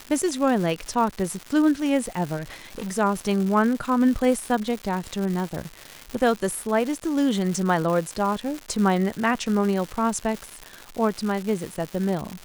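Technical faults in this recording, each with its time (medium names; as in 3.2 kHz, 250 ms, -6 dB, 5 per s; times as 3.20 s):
crackle 290 per s -28 dBFS
2.36–2.97 s: clipped -27.5 dBFS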